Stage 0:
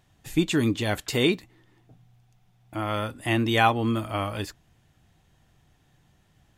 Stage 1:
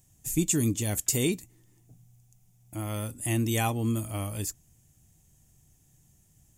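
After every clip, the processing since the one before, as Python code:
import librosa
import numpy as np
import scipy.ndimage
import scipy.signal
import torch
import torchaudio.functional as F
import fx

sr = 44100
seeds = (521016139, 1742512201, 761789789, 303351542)

y = fx.curve_eq(x, sr, hz=(140.0, 1500.0, 2300.0, 4000.0, 6900.0), db=(0, -14, -8, -9, 12))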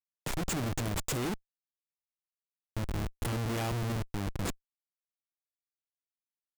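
y = fx.schmitt(x, sr, flips_db=-28.0)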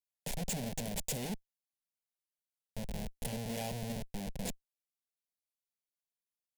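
y = fx.peak_eq(x, sr, hz=11000.0, db=3.5, octaves=0.39)
y = fx.fixed_phaser(y, sr, hz=330.0, stages=6)
y = y * librosa.db_to_amplitude(-2.0)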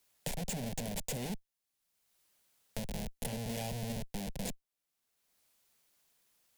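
y = fx.band_squash(x, sr, depth_pct=70)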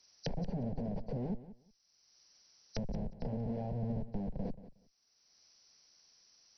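y = fx.freq_compress(x, sr, knee_hz=3900.0, ratio=4.0)
y = fx.env_lowpass_down(y, sr, base_hz=630.0, full_db=-38.0)
y = fx.echo_feedback(y, sr, ms=182, feedback_pct=16, wet_db=-15)
y = y * librosa.db_to_amplitude(2.5)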